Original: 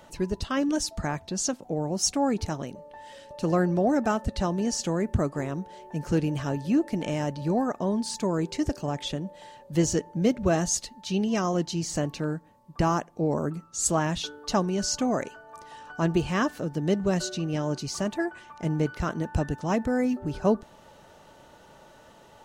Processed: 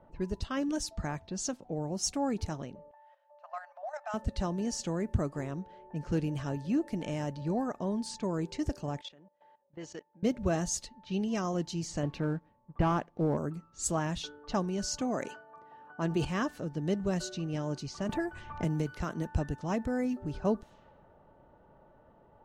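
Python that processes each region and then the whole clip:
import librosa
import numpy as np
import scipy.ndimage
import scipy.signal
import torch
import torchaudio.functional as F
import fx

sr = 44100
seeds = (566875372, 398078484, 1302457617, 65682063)

y = fx.chain(x, sr, fx.brickwall_highpass(low_hz=570.0),
    fx.level_steps(step_db=10), at=(2.91, 4.14))
y = fx.chain(y, sr, fx.highpass(hz=1000.0, slope=6),
    fx.level_steps(step_db=17), at=(9.01, 10.23))
y = fx.chain(y, sr, fx.lowpass(hz=3500.0, slope=12),
    fx.leveller(passes=1), at=(12.03, 13.37))
y = fx.chain(y, sr, fx.highpass(hz=150.0, slope=12),
    fx.sustainer(db_per_s=84.0), at=(15.01, 16.25))
y = fx.chain(y, sr, fx.high_shelf(hz=11000.0, db=11.0),
    fx.band_squash(depth_pct=100), at=(18.09, 19.27))
y = fx.env_lowpass(y, sr, base_hz=920.0, full_db=-24.5)
y = fx.low_shelf(y, sr, hz=110.0, db=6.0)
y = y * 10.0 ** (-7.0 / 20.0)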